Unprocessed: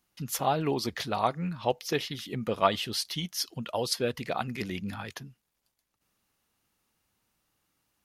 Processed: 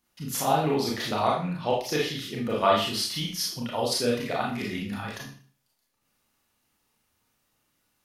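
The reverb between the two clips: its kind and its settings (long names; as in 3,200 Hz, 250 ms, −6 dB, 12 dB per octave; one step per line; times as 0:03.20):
four-comb reverb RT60 0.44 s, combs from 26 ms, DRR −3.5 dB
level −1.5 dB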